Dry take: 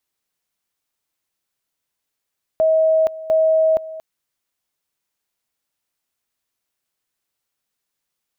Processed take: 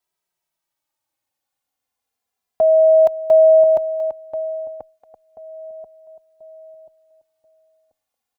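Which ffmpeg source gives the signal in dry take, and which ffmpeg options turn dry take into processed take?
-f lavfi -i "aevalsrc='pow(10,(-12-17*gte(mod(t,0.7),0.47))/20)*sin(2*PI*638*t)':d=1.4:s=44100"
-filter_complex "[0:a]equalizer=f=790:t=o:w=0.75:g=9,asplit=2[s0][s1];[s1]adelay=1035,lowpass=f=860:p=1,volume=0.447,asplit=2[s2][s3];[s3]adelay=1035,lowpass=f=860:p=1,volume=0.34,asplit=2[s4][s5];[s5]adelay=1035,lowpass=f=860:p=1,volume=0.34,asplit=2[s6][s7];[s7]adelay=1035,lowpass=f=860:p=1,volume=0.34[s8];[s2][s4][s6][s8]amix=inputs=4:normalize=0[s9];[s0][s9]amix=inputs=2:normalize=0,asplit=2[s10][s11];[s11]adelay=2.6,afreqshift=-0.32[s12];[s10][s12]amix=inputs=2:normalize=1"

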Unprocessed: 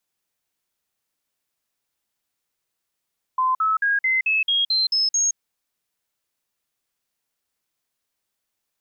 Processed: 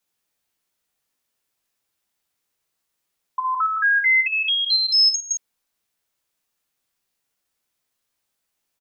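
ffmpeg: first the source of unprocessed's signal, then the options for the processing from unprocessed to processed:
-f lavfi -i "aevalsrc='0.141*clip(min(mod(t,0.22),0.17-mod(t,0.22))/0.005,0,1)*sin(2*PI*1030*pow(2,floor(t/0.22)/3)*mod(t,0.22))':d=1.98:s=44100"
-af "aecho=1:1:16|62:0.631|0.562"

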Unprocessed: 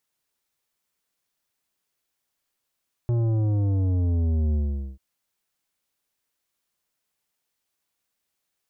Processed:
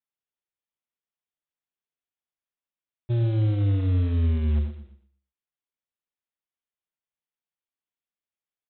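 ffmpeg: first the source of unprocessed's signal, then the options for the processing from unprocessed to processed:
-f lavfi -i "aevalsrc='0.0891*clip((1.89-t)/0.44,0,1)*tanh(3.35*sin(2*PI*120*1.89/log(65/120)*(exp(log(65/120)*t/1.89)-1)))/tanh(3.35)':d=1.89:s=44100"
-af "aresample=8000,acrusher=bits=5:mode=log:mix=0:aa=0.000001,aresample=44100,agate=range=0.178:threshold=0.0562:ratio=16:detection=peak,aecho=1:1:119|238|357:0.282|0.0733|0.0191"

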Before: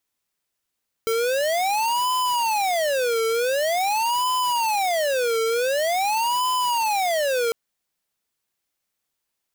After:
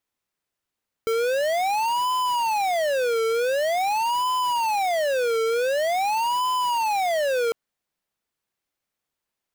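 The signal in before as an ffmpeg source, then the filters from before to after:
-f lavfi -i "aevalsrc='0.0794*(2*lt(mod((729.5*t-280.5/(2*PI*0.46)*sin(2*PI*0.46*t)),1),0.5)-1)':d=6.45:s=44100"
-af "highshelf=f=3400:g=-7.5"

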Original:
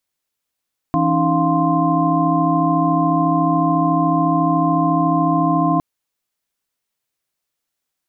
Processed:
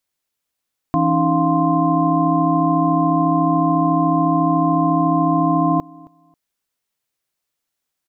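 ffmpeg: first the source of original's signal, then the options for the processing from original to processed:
-f lavfi -i "aevalsrc='0.1*(sin(2*PI*164.81*t)+sin(2*PI*277.18*t)+sin(2*PI*311.13*t)+sin(2*PI*698.46*t)+sin(2*PI*1046.5*t))':d=4.86:s=44100"
-af "aecho=1:1:270|540:0.0631|0.0126"

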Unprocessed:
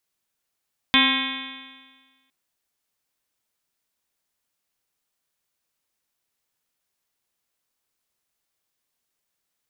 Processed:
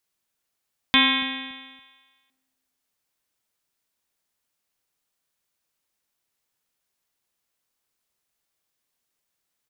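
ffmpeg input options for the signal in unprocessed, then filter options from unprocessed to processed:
-f lavfi -i "aevalsrc='0.1*pow(10,-3*t/1.46)*sin(2*PI*261.22*t)+0.0141*pow(10,-3*t/1.46)*sin(2*PI*523.77*t)+0.0282*pow(10,-3*t/1.46)*sin(2*PI*788.97*t)+0.075*pow(10,-3*t/1.46)*sin(2*PI*1058.1*t)+0.0224*pow(10,-3*t/1.46)*sin(2*PI*1332.44*t)+0.0562*pow(10,-3*t/1.46)*sin(2*PI*1613.21*t)+0.0668*pow(10,-3*t/1.46)*sin(2*PI*1901.57*t)+0.0891*pow(10,-3*t/1.46)*sin(2*PI*2198.66*t)+0.0891*pow(10,-3*t/1.46)*sin(2*PI*2505.51*t)+0.0251*pow(10,-3*t/1.46)*sin(2*PI*2823.15*t)+0.0891*pow(10,-3*t/1.46)*sin(2*PI*3152.48*t)+0.141*pow(10,-3*t/1.46)*sin(2*PI*3494.39*t)+0.0282*pow(10,-3*t/1.46)*sin(2*PI*3849.67*t)':d=1.36:s=44100"
-filter_complex "[0:a]asplit=2[s0][s1];[s1]adelay=284,lowpass=f=1000:p=1,volume=0.141,asplit=2[s2][s3];[s3]adelay=284,lowpass=f=1000:p=1,volume=0.31,asplit=2[s4][s5];[s5]adelay=284,lowpass=f=1000:p=1,volume=0.31[s6];[s0][s2][s4][s6]amix=inputs=4:normalize=0"

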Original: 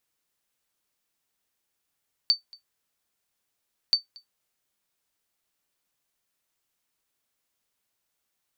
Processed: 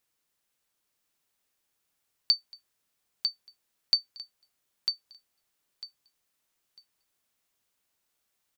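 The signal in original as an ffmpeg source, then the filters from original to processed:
-f lavfi -i "aevalsrc='0.266*(sin(2*PI*4560*mod(t,1.63))*exp(-6.91*mod(t,1.63)/0.13)+0.0501*sin(2*PI*4560*max(mod(t,1.63)-0.23,0))*exp(-6.91*max(mod(t,1.63)-0.23,0)/0.13))':d=3.26:s=44100"
-filter_complex "[0:a]asplit=2[s0][s1];[s1]aecho=0:1:949|1898|2847:0.531|0.111|0.0234[s2];[s0][s2]amix=inputs=2:normalize=0"

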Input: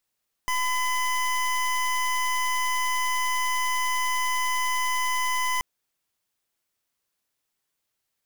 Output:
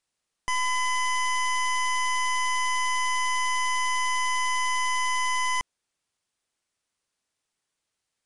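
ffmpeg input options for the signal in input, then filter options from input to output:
-f lavfi -i "aevalsrc='0.0562*(2*lt(mod(1010*t,1),0.25)-1)':d=5.13:s=44100"
-af "aresample=22050,aresample=44100"

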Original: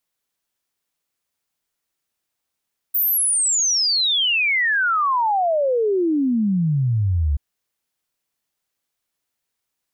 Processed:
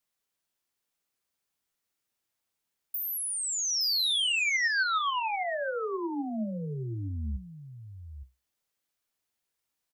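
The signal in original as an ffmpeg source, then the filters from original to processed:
-f lavfi -i "aevalsrc='0.158*clip(min(t,4.43-t)/0.01,0,1)*sin(2*PI*15000*4.43/log(68/15000)*(exp(log(68/15000)*t/4.43)-1))':d=4.43:s=44100"
-filter_complex "[0:a]acrossover=split=1600|4300[s0][s1][s2];[s0]acompressor=threshold=0.0316:ratio=4[s3];[s1]acompressor=threshold=0.0447:ratio=4[s4];[s2]acompressor=threshold=0.0316:ratio=4[s5];[s3][s4][s5]amix=inputs=3:normalize=0,flanger=delay=8.8:depth=7.2:regen=64:speed=0.46:shape=sinusoidal,asplit=2[s6][s7];[s7]aecho=0:1:867:0.299[s8];[s6][s8]amix=inputs=2:normalize=0"

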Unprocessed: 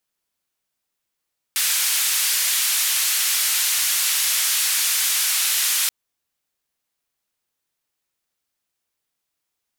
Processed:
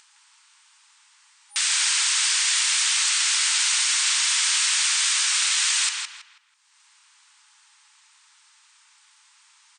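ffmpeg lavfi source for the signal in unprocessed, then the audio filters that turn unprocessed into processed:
-f lavfi -i "anoisesrc=c=white:d=4.33:r=44100:seed=1,highpass=f=1800,lowpass=f=14000,volume=-13dB"
-filter_complex "[0:a]afftfilt=real='re*between(b*sr/4096,820,9300)':imag='im*between(b*sr/4096,820,9300)':win_size=4096:overlap=0.75,acompressor=mode=upward:threshold=0.0141:ratio=2.5,asplit=2[s0][s1];[s1]adelay=163,lowpass=f=3800:p=1,volume=0.708,asplit=2[s2][s3];[s3]adelay=163,lowpass=f=3800:p=1,volume=0.34,asplit=2[s4][s5];[s5]adelay=163,lowpass=f=3800:p=1,volume=0.34,asplit=2[s6][s7];[s7]adelay=163,lowpass=f=3800:p=1,volume=0.34[s8];[s2][s4][s6][s8]amix=inputs=4:normalize=0[s9];[s0][s9]amix=inputs=2:normalize=0"

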